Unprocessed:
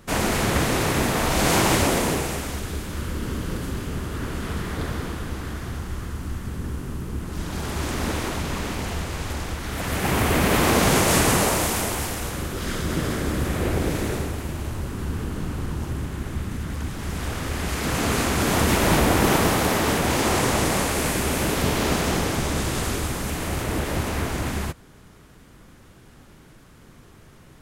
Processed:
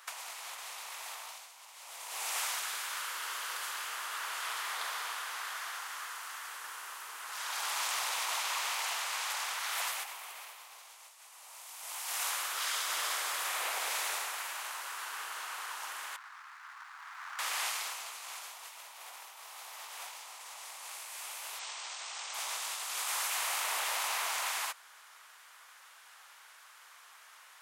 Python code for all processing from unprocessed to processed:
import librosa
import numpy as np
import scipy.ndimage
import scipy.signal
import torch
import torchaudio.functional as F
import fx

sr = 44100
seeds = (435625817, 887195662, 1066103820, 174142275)

y = fx.chain(x, sr, fx.median_filter(points=15),
    fx.ladder_highpass(hz=870.0, resonance_pct=30),
    fx.high_shelf(hz=11000.0, db=-9.5), at=(16.16, 17.39))
y = fx.chain(y, sr, fx.low_shelf(hz=270.0, db=-10.5),
    fx.quant_companded(bits=2),
    fx.brickwall_lowpass(high_hz=8800.0), at=(21.59, 22.34))
y = scipy.signal.sosfilt(scipy.signal.cheby2(4, 70, 200.0, 'highpass', fs=sr, output='sos'), y)
y = fx.dynamic_eq(y, sr, hz=1600.0, q=1.7, threshold_db=-41.0, ratio=4.0, max_db=-7)
y = fx.over_compress(y, sr, threshold_db=-35.0, ratio=-0.5)
y = F.gain(torch.from_numpy(y), -3.0).numpy()